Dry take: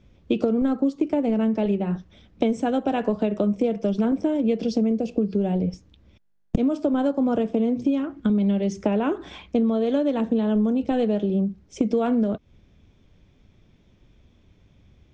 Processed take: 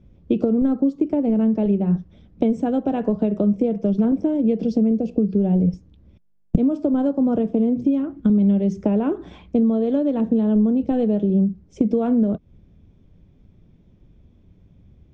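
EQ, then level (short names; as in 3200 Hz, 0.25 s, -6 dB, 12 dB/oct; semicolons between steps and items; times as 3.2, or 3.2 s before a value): tilt shelf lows +7 dB, about 810 Hz; bell 170 Hz +4.5 dB 0.26 oct; -2.5 dB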